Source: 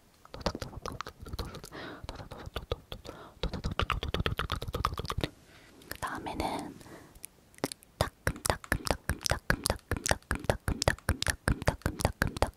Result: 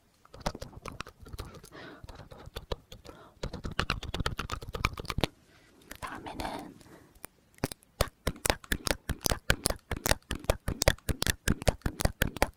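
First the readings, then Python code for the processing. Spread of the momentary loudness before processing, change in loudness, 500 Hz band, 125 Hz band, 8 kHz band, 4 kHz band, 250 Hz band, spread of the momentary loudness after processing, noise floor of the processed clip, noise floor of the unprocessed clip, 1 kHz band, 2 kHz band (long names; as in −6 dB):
14 LU, +1.0 dB, +0.5 dB, −1.0 dB, +2.0 dB, +2.0 dB, 0.0 dB, 19 LU, −66 dBFS, −62 dBFS, −1.5 dB, 0.0 dB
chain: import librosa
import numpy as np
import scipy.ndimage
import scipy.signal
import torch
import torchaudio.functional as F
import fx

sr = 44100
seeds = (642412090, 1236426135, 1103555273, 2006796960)

y = fx.spec_quant(x, sr, step_db=15)
y = fx.cheby_harmonics(y, sr, harmonics=(3, 6), levels_db=(-15, -13), full_scale_db=-5.5)
y = F.gain(torch.from_numpy(y), 3.0).numpy()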